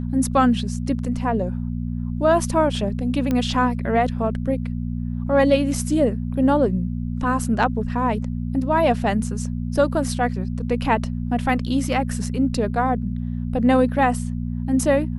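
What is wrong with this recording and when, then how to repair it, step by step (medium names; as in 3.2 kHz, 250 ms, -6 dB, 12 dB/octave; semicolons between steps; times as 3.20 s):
hum 60 Hz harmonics 4 -26 dBFS
3.31 s: pop -11 dBFS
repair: de-click; de-hum 60 Hz, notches 4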